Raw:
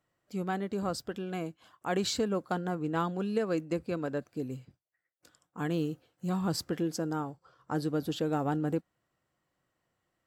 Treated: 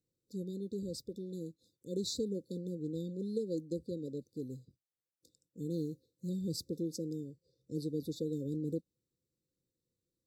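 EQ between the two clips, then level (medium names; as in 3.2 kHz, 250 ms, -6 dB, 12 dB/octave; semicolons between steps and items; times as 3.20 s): brick-wall FIR band-stop 550–3500 Hz; -5.5 dB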